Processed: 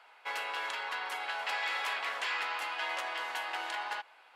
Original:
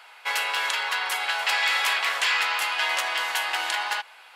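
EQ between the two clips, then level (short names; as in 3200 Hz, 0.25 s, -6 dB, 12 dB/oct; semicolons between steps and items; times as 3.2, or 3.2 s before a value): tilt -3 dB/oct; low shelf 180 Hz -4 dB; -8.0 dB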